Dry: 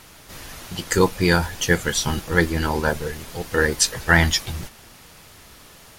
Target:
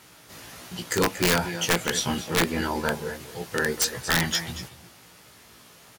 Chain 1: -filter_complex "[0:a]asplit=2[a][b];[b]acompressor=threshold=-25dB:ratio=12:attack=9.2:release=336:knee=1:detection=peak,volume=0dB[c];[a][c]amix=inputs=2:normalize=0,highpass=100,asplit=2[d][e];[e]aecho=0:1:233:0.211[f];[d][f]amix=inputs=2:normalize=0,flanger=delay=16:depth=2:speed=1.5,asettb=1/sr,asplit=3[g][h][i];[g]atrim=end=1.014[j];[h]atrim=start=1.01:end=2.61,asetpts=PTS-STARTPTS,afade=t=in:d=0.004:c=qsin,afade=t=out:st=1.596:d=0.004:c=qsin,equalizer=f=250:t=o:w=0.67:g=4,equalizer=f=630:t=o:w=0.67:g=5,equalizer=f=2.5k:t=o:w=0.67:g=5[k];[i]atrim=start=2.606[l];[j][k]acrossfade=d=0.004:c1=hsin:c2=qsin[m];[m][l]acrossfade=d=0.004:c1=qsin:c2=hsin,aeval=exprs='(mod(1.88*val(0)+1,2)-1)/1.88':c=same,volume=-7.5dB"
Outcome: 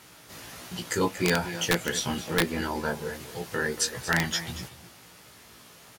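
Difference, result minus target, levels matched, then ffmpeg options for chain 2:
compressor: peak gain reduction +10 dB
-filter_complex "[0:a]asplit=2[a][b];[b]acompressor=threshold=-14dB:ratio=12:attack=9.2:release=336:knee=1:detection=peak,volume=0dB[c];[a][c]amix=inputs=2:normalize=0,highpass=100,asplit=2[d][e];[e]aecho=0:1:233:0.211[f];[d][f]amix=inputs=2:normalize=0,flanger=delay=16:depth=2:speed=1.5,asettb=1/sr,asplit=3[g][h][i];[g]atrim=end=1.014[j];[h]atrim=start=1.01:end=2.61,asetpts=PTS-STARTPTS,afade=t=in:d=0.004:c=qsin,afade=t=out:st=1.596:d=0.004:c=qsin,equalizer=f=250:t=o:w=0.67:g=4,equalizer=f=630:t=o:w=0.67:g=5,equalizer=f=2.5k:t=o:w=0.67:g=5[k];[i]atrim=start=2.606[l];[j][k]acrossfade=d=0.004:c1=hsin:c2=qsin[m];[m][l]acrossfade=d=0.004:c1=qsin:c2=hsin,aeval=exprs='(mod(1.88*val(0)+1,2)-1)/1.88':c=same,volume=-7.5dB"

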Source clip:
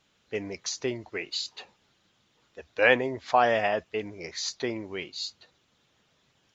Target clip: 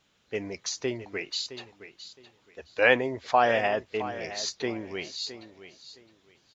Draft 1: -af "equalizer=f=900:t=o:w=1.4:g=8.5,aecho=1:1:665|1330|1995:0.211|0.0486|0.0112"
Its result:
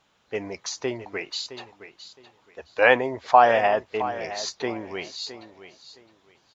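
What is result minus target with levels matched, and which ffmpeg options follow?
1000 Hz band +3.0 dB
-af "aecho=1:1:665|1330|1995:0.211|0.0486|0.0112"

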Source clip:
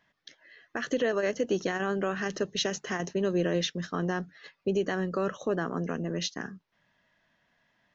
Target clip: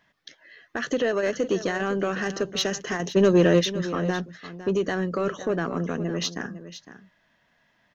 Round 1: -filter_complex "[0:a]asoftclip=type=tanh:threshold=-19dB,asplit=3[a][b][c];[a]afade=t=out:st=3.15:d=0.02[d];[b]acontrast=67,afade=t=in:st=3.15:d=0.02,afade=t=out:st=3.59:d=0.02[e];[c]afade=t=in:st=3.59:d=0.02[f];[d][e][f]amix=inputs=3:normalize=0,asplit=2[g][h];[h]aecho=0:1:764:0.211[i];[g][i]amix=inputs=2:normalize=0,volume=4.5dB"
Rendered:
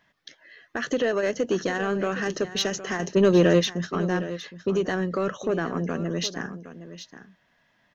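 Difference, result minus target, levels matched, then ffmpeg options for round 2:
echo 0.257 s late
-filter_complex "[0:a]asoftclip=type=tanh:threshold=-19dB,asplit=3[a][b][c];[a]afade=t=out:st=3.15:d=0.02[d];[b]acontrast=67,afade=t=in:st=3.15:d=0.02,afade=t=out:st=3.59:d=0.02[e];[c]afade=t=in:st=3.59:d=0.02[f];[d][e][f]amix=inputs=3:normalize=0,asplit=2[g][h];[h]aecho=0:1:507:0.211[i];[g][i]amix=inputs=2:normalize=0,volume=4.5dB"

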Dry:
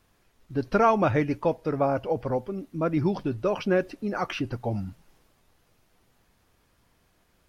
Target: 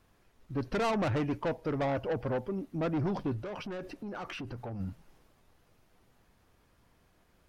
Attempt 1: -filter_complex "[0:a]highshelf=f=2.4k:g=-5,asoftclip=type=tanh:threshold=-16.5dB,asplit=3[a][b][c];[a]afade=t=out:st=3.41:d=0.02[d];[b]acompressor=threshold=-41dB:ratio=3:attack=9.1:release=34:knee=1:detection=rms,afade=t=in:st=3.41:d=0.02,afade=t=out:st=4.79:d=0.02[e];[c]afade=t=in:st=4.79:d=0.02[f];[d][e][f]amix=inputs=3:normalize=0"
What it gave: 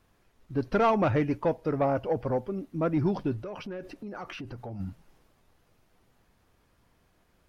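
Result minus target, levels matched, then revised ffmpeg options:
soft clip: distortion -10 dB
-filter_complex "[0:a]highshelf=f=2.4k:g=-5,asoftclip=type=tanh:threshold=-27dB,asplit=3[a][b][c];[a]afade=t=out:st=3.41:d=0.02[d];[b]acompressor=threshold=-41dB:ratio=3:attack=9.1:release=34:knee=1:detection=rms,afade=t=in:st=3.41:d=0.02,afade=t=out:st=4.79:d=0.02[e];[c]afade=t=in:st=4.79:d=0.02[f];[d][e][f]amix=inputs=3:normalize=0"

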